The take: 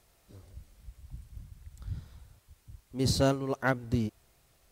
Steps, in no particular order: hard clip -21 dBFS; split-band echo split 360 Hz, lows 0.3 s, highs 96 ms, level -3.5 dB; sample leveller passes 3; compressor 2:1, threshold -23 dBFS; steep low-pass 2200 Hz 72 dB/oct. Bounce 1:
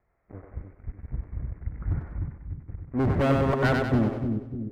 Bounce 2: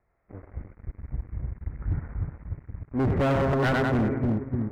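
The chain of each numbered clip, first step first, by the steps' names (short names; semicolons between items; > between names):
compressor > sample leveller > steep low-pass > hard clip > split-band echo; compressor > split-band echo > sample leveller > steep low-pass > hard clip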